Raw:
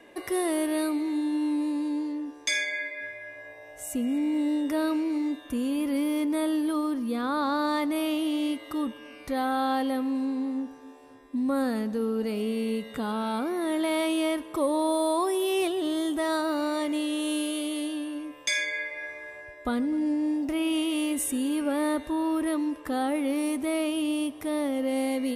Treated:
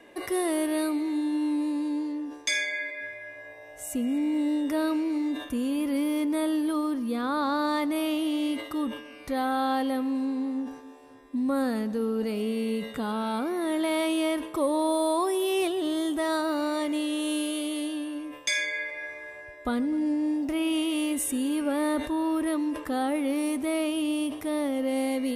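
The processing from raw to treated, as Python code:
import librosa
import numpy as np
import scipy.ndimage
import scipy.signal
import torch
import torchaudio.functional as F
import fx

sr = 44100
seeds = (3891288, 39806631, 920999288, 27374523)

y = fx.sustainer(x, sr, db_per_s=95.0)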